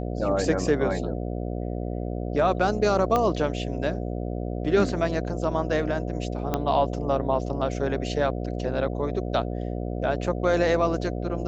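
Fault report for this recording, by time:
buzz 60 Hz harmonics 12 -30 dBFS
3.16 pop -11 dBFS
6.54 pop -11 dBFS

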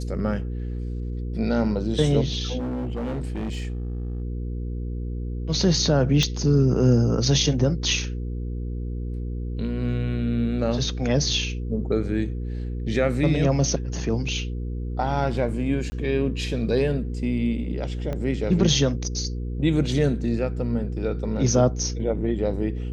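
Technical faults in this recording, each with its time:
hum 60 Hz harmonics 8 -29 dBFS
2.58–4.22 clipped -25 dBFS
6.23 pop -9 dBFS
15.9–15.92 gap 20 ms
18.13 pop -18 dBFS

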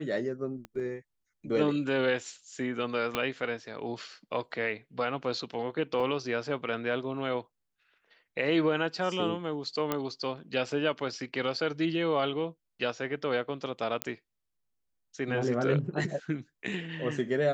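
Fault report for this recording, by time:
0.65 pop -28 dBFS
3.15 pop -14 dBFS
6 gap 4.1 ms
9.92 pop -14 dBFS
14.02 pop -11 dBFS

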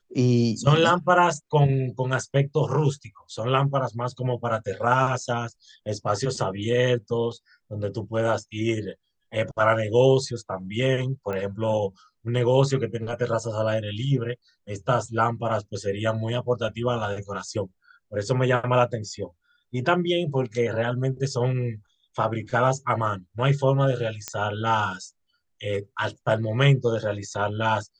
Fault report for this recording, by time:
11.33 pop -20 dBFS
24.28 pop -12 dBFS

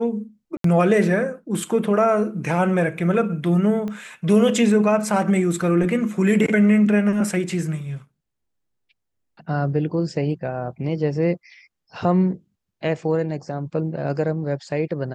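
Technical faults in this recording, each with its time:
0.57–0.64 gap 73 ms
3.88 pop -19 dBFS

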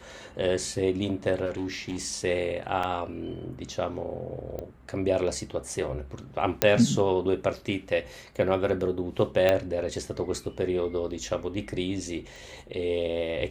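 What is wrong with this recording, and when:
1.45–2.07 clipped -26.5 dBFS
2.83 gap 4.6 ms
4.59 pop -23 dBFS
6.62 pop -4 dBFS
9.49 pop -10 dBFS
12.36 pop

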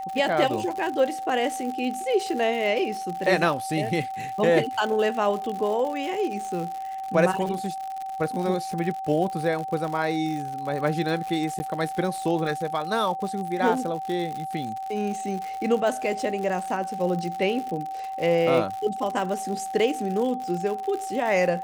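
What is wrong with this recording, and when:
crackle 110/s -30 dBFS
tone 770 Hz -30 dBFS
11.59–11.6 gap 10 ms

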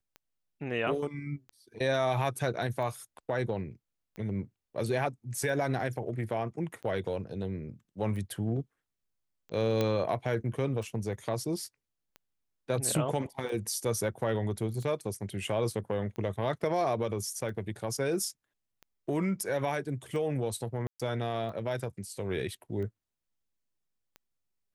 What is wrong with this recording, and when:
tick 45 rpm -32 dBFS
9.81 pop -15 dBFS
20.87–21 gap 0.126 s

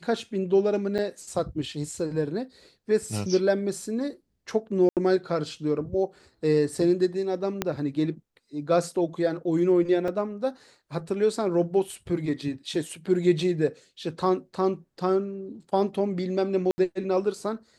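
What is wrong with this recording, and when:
0.98–0.99 gap 6.4 ms
4.89–4.97 gap 78 ms
7.62 pop -10 dBFS
10.08 gap 3.1 ms
16.71–16.78 gap 70 ms

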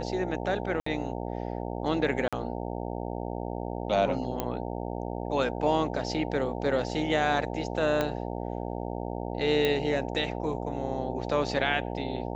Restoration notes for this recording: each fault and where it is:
buzz 60 Hz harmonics 15 -34 dBFS
0.8–0.86 gap 64 ms
2.28–2.33 gap 46 ms
4.4 pop -14 dBFS
8.01 pop -13 dBFS
9.65 pop -13 dBFS

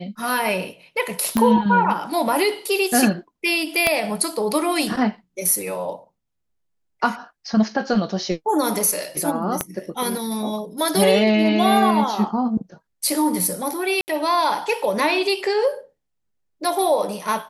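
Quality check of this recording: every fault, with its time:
1.37 pop -6 dBFS
3.87 pop -3 dBFS
9.61 pop -6 dBFS
14.01–14.08 gap 69 ms

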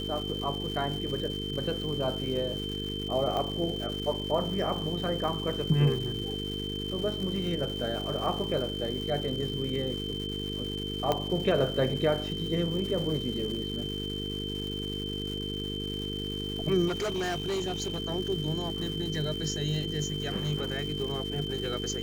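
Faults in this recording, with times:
buzz 50 Hz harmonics 9 -36 dBFS
crackle 440/s -37 dBFS
tone 3100 Hz -36 dBFS
3.37 pop -19 dBFS
11.12 pop -13 dBFS
16.87–18 clipped -27 dBFS

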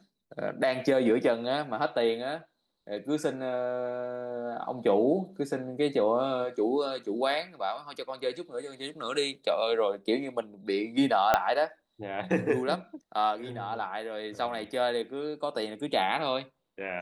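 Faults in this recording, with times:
11.34 pop -8 dBFS

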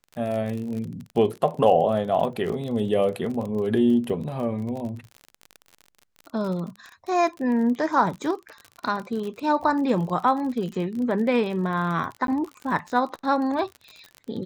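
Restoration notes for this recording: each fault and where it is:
crackle 41/s -31 dBFS
12.27–12.28 gap 12 ms

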